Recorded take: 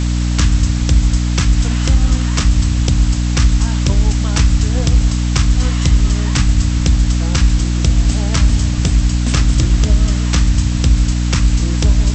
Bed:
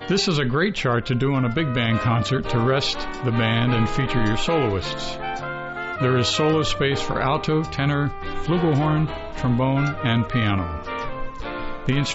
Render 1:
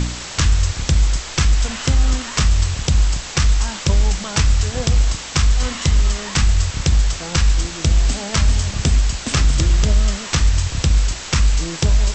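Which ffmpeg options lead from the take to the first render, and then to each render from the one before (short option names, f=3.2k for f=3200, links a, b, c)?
-af "bandreject=f=60:t=h:w=4,bandreject=f=120:t=h:w=4,bandreject=f=180:t=h:w=4,bandreject=f=240:t=h:w=4,bandreject=f=300:t=h:w=4"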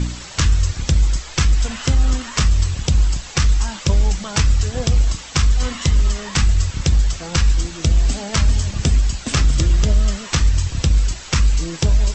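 -af "afftdn=nr=8:nf=-31"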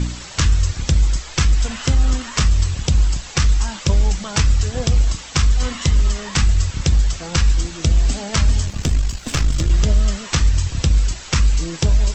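-filter_complex "[0:a]asettb=1/sr,asplit=3[a][b][c];[a]atrim=end=8.654[d];[b]atrim=start=8.65:end=9.7,asetpts=PTS-STARTPTS,afade=t=in:d=0.004:c=qsin,afade=t=out:st=1.046:d=0.004:c=qsin,aeval=exprs='if(lt(val(0),0),0.447*val(0),val(0))':c=same[e];[c]atrim=start=9.696[f];[d][e]acrossfade=d=0.004:c1=hsin:c2=qsin[g];[g][f]acrossfade=d=0.004:c1=qsin:c2=hsin"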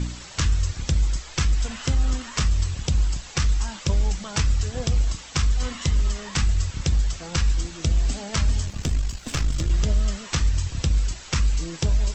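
-af "volume=-6dB"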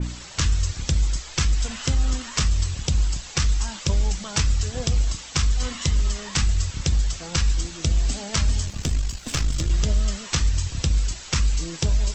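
-af "adynamicequalizer=threshold=0.00794:dfrequency=2800:dqfactor=0.7:tfrequency=2800:tqfactor=0.7:attack=5:release=100:ratio=0.375:range=2:mode=boostabove:tftype=highshelf"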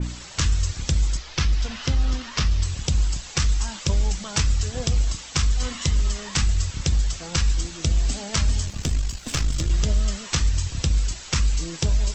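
-filter_complex "[0:a]asettb=1/sr,asplit=3[a][b][c];[a]atrim=end=1.174[d];[b]atrim=start=1.17:end=2.63,asetpts=PTS-STARTPTS,afade=t=in:d=0.004:c=qsin,afade=t=out:st=1.456:d=0.004:c=qsin,lowpass=f=5.7k:w=0.5412,lowpass=f=5.7k:w=1.3066[e];[c]atrim=start=2.626[f];[d][e]acrossfade=d=0.004:c1=hsin:c2=qsin[g];[g][f]acrossfade=d=0.004:c1=qsin:c2=hsin"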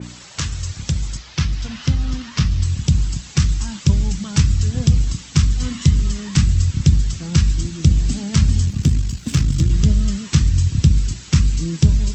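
-af "highpass=130,asubboost=boost=11.5:cutoff=180"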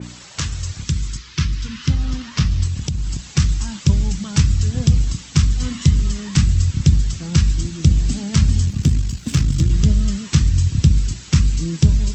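-filter_complex "[0:a]asettb=1/sr,asplit=3[a][b][c];[a]atrim=end=0.844[d];[b]atrim=start=0.84:end=1.9,asetpts=PTS-STARTPTS,afade=t=in:d=0.004:c=qsin,afade=t=out:st=1.056:d=0.004:c=qsin,asuperstop=centerf=660:order=4:qfactor=1.2[e];[c]atrim=start=1.896[f];[d][e]acrossfade=d=0.004:c1=hsin:c2=qsin[g];[g][f]acrossfade=d=0.004:c1=qsin:c2=hsin,asettb=1/sr,asplit=3[h][i][j];[h]atrim=end=2.674[k];[i]atrim=start=2.67:end=3.26,asetpts=PTS-STARTPTS,afade=t=in:d=0.004:c=qsin,afade=t=out:st=0.586:d=0.004:c=qsin,acompressor=threshold=-18dB:ratio=6:attack=3.2:release=140:knee=1:detection=peak[l];[j]atrim=start=3.256[m];[k][l]acrossfade=d=0.004:c1=hsin:c2=qsin[n];[n][m]acrossfade=d=0.004:c1=qsin:c2=hsin"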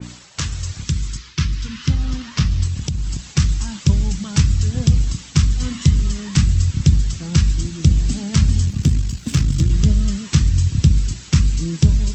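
-af "agate=range=-33dB:threshold=-35dB:ratio=3:detection=peak"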